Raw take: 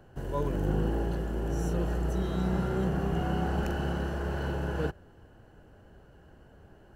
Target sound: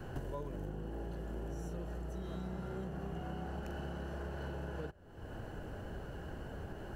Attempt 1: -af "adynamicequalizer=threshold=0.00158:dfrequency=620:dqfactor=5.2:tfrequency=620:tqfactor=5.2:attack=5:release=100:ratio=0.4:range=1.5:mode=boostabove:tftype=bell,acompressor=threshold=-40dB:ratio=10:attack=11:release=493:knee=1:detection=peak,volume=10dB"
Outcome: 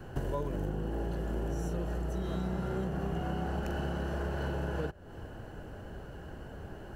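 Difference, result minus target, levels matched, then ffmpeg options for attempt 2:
compressor: peak gain reduction -7.5 dB
-af "adynamicequalizer=threshold=0.00158:dfrequency=620:dqfactor=5.2:tfrequency=620:tqfactor=5.2:attack=5:release=100:ratio=0.4:range=1.5:mode=boostabove:tftype=bell,acompressor=threshold=-48.5dB:ratio=10:attack=11:release=493:knee=1:detection=peak,volume=10dB"

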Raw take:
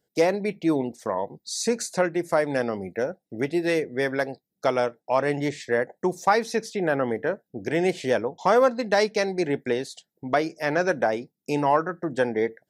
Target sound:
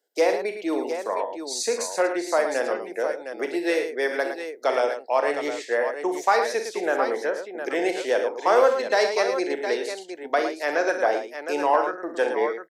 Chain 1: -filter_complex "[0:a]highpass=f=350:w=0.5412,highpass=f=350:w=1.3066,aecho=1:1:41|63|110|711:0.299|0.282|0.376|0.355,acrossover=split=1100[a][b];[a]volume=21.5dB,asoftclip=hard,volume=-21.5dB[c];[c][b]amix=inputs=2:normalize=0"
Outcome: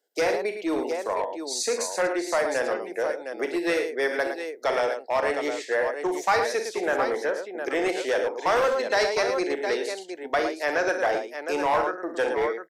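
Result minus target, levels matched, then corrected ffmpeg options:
overloaded stage: distortion +35 dB
-filter_complex "[0:a]highpass=f=350:w=0.5412,highpass=f=350:w=1.3066,aecho=1:1:41|63|110|711:0.299|0.282|0.376|0.355,acrossover=split=1100[a][b];[a]volume=9.5dB,asoftclip=hard,volume=-9.5dB[c];[c][b]amix=inputs=2:normalize=0"

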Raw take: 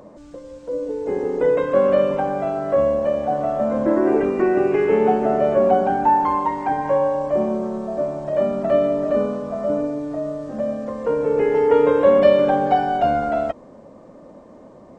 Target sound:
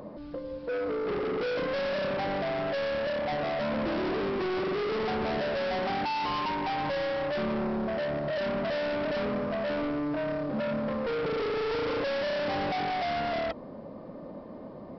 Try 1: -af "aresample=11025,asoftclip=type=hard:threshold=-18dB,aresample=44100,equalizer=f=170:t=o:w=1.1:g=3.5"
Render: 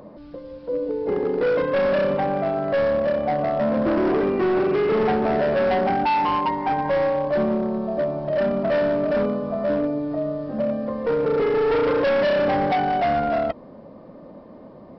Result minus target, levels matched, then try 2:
hard clip: distortion -6 dB
-af "aresample=11025,asoftclip=type=hard:threshold=-29.5dB,aresample=44100,equalizer=f=170:t=o:w=1.1:g=3.5"

